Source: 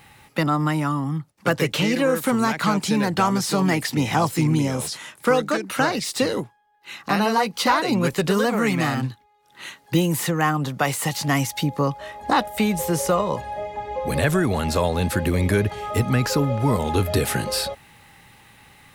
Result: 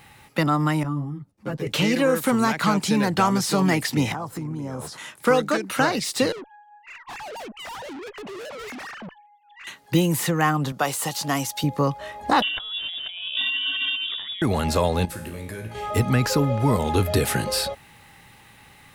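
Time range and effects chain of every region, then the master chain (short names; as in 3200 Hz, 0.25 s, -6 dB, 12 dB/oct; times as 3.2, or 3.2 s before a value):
0.83–1.67 tilt shelf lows +7.5 dB, about 650 Hz + compressor 1.5:1, threshold -32 dBFS + ensemble effect
4.12–4.98 resonant high shelf 1800 Hz -8.5 dB, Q 1.5 + compressor 8:1, threshold -27 dBFS
6.32–9.67 sine-wave speech + tube stage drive 35 dB, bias 0.2
10.72–11.64 HPF 310 Hz 6 dB/oct + bell 2100 Hz -7 dB 0.54 oct
12.42–14.42 negative-ratio compressor -32 dBFS + low shelf 450 Hz +5 dB + inverted band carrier 3600 Hz
15.05–15.75 high shelf 7900 Hz +6 dB + compressor 2.5:1, threshold -22 dBFS + resonator 56 Hz, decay 0.7 s, mix 80%
whole clip: dry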